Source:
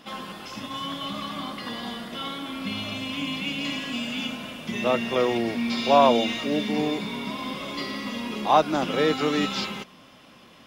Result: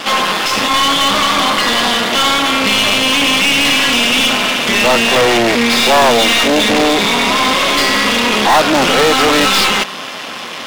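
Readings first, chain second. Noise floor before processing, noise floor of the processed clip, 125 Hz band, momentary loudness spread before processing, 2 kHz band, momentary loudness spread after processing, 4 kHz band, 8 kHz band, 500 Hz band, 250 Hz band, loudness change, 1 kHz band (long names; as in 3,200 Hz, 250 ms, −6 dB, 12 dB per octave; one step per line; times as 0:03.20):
−51 dBFS, −26 dBFS, +9.5 dB, 12 LU, +20.5 dB, 3 LU, +19.5 dB, +25.5 dB, +11.0 dB, +10.5 dB, +15.5 dB, +13.5 dB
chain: half-wave rectification
mid-hump overdrive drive 37 dB, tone 5,800 Hz, clips at −4.5 dBFS
level +2.5 dB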